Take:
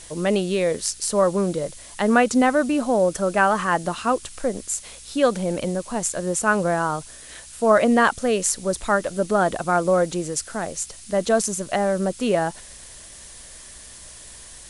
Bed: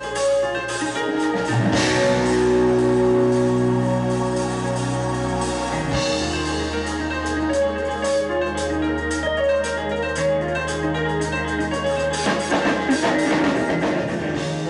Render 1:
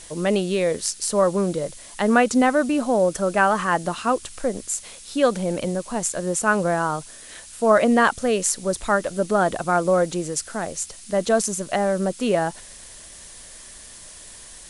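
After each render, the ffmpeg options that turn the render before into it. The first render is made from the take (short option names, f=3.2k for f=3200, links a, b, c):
-af "bandreject=f=60:t=h:w=4,bandreject=f=120:t=h:w=4"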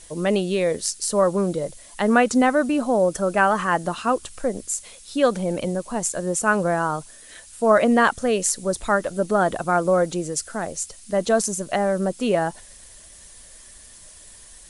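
-af "afftdn=nr=6:nf=-43"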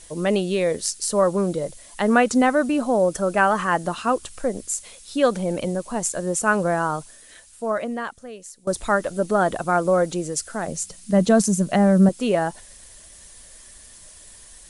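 -filter_complex "[0:a]asettb=1/sr,asplit=3[a][b][c];[a]atrim=end=10.684[d];[b]atrim=start=10.68:end=12.09,asetpts=PTS-STARTPTS,afade=t=in:d=0.004:c=qsin,afade=t=out:st=1.406:d=0.004:c=qsin,equalizer=f=180:t=o:w=1:g=12.5[e];[c]atrim=start=12.086[f];[d][e]acrossfade=d=0.004:c1=hsin:c2=qsin[g];[g][f]acrossfade=d=0.004:c1=qsin:c2=hsin,asplit=2[h][i];[h]atrim=end=8.67,asetpts=PTS-STARTPTS,afade=t=out:st=6.99:d=1.68:c=qua:silence=0.105925[j];[i]atrim=start=8.67,asetpts=PTS-STARTPTS,afade=t=in:d=0.004:c=hsin:silence=0.105925[k];[j][k]concat=n=2:v=0:a=1"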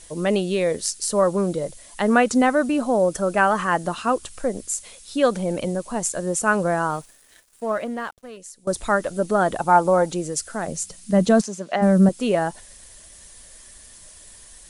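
-filter_complex "[0:a]asettb=1/sr,asplit=3[a][b][c];[a]atrim=end=6.904[d];[b]atrim=start=6.9:end=8.37,asetpts=PTS-STARTPTS,afade=t=in:d=0.004:c=qsin,afade=t=out:st=1.466:d=0.004:c=qsin,aeval=exprs='sgn(val(0))*max(abs(val(0))-0.00376,0)':c=same[e];[c]atrim=start=8.366[f];[d][e]acrossfade=d=0.004:c1=hsin:c2=qsin[g];[g][f]acrossfade=d=0.004:c1=qsin:c2=hsin,asettb=1/sr,asplit=3[h][i][j];[h]atrim=end=9.594[k];[i]atrim=start=9.59:end=10.1,asetpts=PTS-STARTPTS,afade=t=in:d=0.004:c=qsin,afade=t=out:st=0.506:d=0.004:c=qsin,equalizer=f=860:w=6.4:g=14.5[l];[j]atrim=start=10.096[m];[k][l]acrossfade=d=0.004:c1=hsin:c2=qsin[n];[n][m]acrossfade=d=0.004:c1=qsin:c2=hsin,asplit=3[o][p][q];[o]afade=t=out:st=11.4:d=0.02[r];[p]highpass=440,lowpass=4.7k,afade=t=in:st=11.4:d=0.02,afade=t=out:st=11.81:d=0.02[s];[q]afade=t=in:st=11.81:d=0.02[t];[r][s][t]amix=inputs=3:normalize=0"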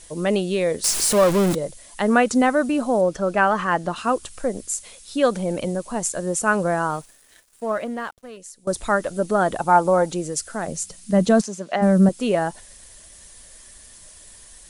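-filter_complex "[0:a]asettb=1/sr,asplit=3[a][b][c];[a]atrim=end=0.844[d];[b]atrim=start=0.84:end=1.55,asetpts=PTS-STARTPTS,afade=t=in:d=0.004:c=qsin,afade=t=out:st=0.706:d=0.004:c=qsin,aeval=exprs='val(0)+0.5*0.112*sgn(val(0))':c=same[e];[c]atrim=start=1.546[f];[d][e]acrossfade=d=0.004:c1=hsin:c2=qsin[g];[g][f]acrossfade=d=0.004:c1=qsin:c2=hsin,asettb=1/sr,asplit=3[h][i][j];[h]atrim=end=3.014[k];[i]atrim=start=3.01:end=3.96,asetpts=PTS-STARTPTS,afade=t=in:d=0.004:c=qsin,afade=t=out:st=0.946:d=0.004:c=qsin,acrossover=split=6000[l][m];[m]acompressor=threshold=-55dB:ratio=4:attack=1:release=60[n];[l][n]amix=inputs=2:normalize=0[o];[j]atrim=start=3.956[p];[k][o]acrossfade=d=0.004:c1=hsin:c2=qsin[q];[q][p]acrossfade=d=0.004:c1=qsin:c2=hsin"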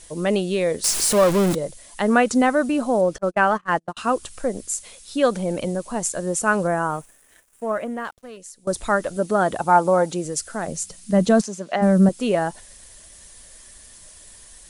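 -filter_complex "[0:a]asettb=1/sr,asplit=3[a][b][c];[a]atrim=end=3.184[d];[b]atrim=start=3.18:end=3.97,asetpts=PTS-STARTPTS,afade=t=in:d=0.004:c=qsin,afade=t=out:st=0.786:d=0.004:c=qsin,agate=range=-41dB:threshold=-23dB:ratio=16:release=100:detection=peak[e];[c]atrim=start=3.966[f];[d][e]acrossfade=d=0.004:c1=hsin:c2=qsin[g];[g][f]acrossfade=d=0.004:c1=qsin:c2=hsin,asettb=1/sr,asplit=3[h][i][j];[h]atrim=end=6.674[k];[i]atrim=start=6.67:end=8.05,asetpts=PTS-STARTPTS,afade=t=in:d=0.004:c=qsin,afade=t=out:st=1.376:d=0.004:c=qsin,equalizer=f=4.4k:w=1.7:g=-10[l];[j]atrim=start=8.046[m];[k][l]acrossfade=d=0.004:c1=hsin:c2=qsin[n];[n][m]acrossfade=d=0.004:c1=qsin:c2=hsin,asettb=1/sr,asplit=3[o][p][q];[o]atrim=end=9.164[r];[p]atrim=start=9.16:end=10.25,asetpts=PTS-STARTPTS,afade=t=in:d=0.004:c=qsin,afade=t=out:st=1.086:d=0.004:c=qsin,highpass=52[s];[q]atrim=start=10.246[t];[r][s]acrossfade=d=0.004:c1=hsin:c2=qsin[u];[u][t]acrossfade=d=0.004:c1=qsin:c2=hsin"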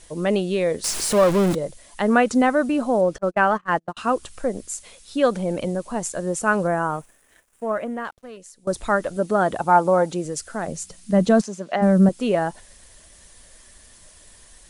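-af "highshelf=f=5.1k:g=-6.5"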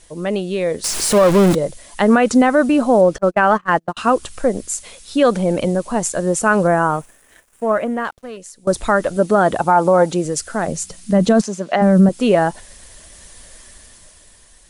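-af "alimiter=limit=-11dB:level=0:latency=1:release=54,dynaudnorm=f=140:g=13:m=8dB"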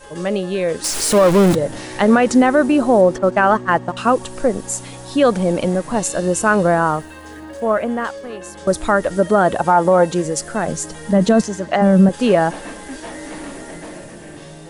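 -filter_complex "[1:a]volume=-13dB[a];[0:a][a]amix=inputs=2:normalize=0"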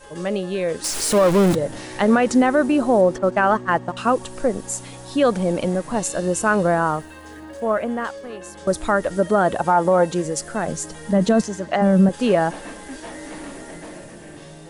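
-af "volume=-3.5dB"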